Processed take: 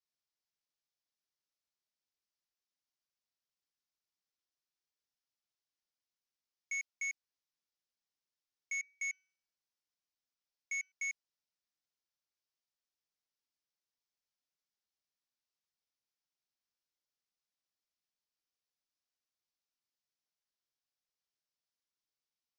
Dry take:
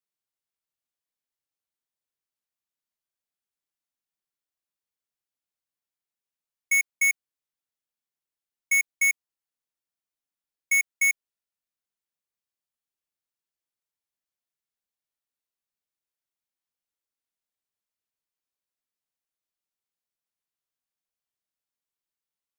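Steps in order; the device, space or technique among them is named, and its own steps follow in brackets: overdriven synthesiser ladder filter (saturation -32 dBFS, distortion -18 dB; four-pole ladder low-pass 6.3 kHz, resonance 50%); 8.80–10.92 s: de-hum 376.8 Hz, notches 17; trim +4.5 dB

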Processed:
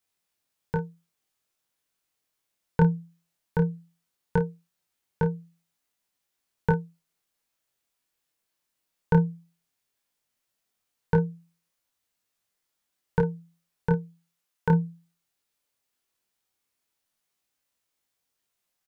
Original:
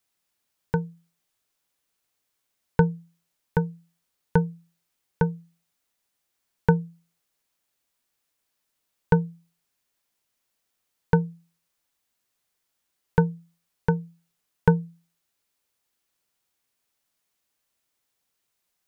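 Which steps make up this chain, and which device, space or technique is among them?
13.92–14.70 s: bass shelf 350 Hz -8.5 dB; double-tracked vocal (doubling 30 ms -9.5 dB; chorus 0.17 Hz, delay 19 ms, depth 5.4 ms)

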